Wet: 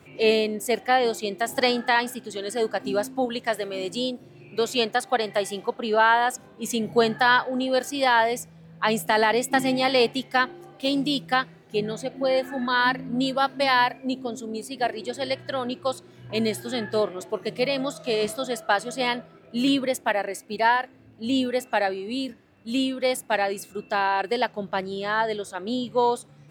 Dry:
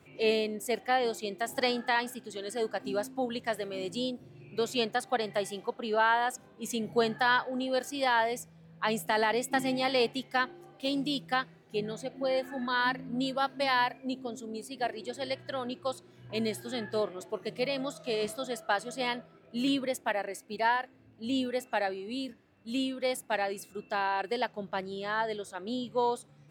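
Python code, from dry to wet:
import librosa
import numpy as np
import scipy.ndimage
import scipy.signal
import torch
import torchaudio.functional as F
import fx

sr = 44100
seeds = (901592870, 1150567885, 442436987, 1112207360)

y = fx.low_shelf(x, sr, hz=140.0, db=-10.0, at=(3.25, 5.51))
y = F.gain(torch.from_numpy(y), 7.0).numpy()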